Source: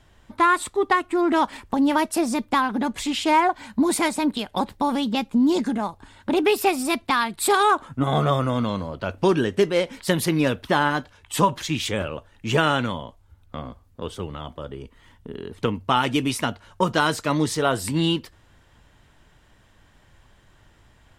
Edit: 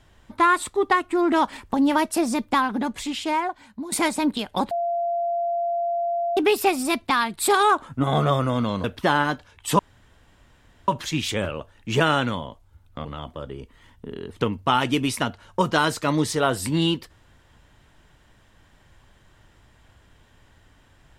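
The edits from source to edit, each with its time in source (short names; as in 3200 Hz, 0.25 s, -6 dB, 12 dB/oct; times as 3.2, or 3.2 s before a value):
2.59–3.92 fade out, to -16 dB
4.71–6.37 bleep 688 Hz -21.5 dBFS
8.84–10.5 cut
11.45 insert room tone 1.09 s
13.62–14.27 cut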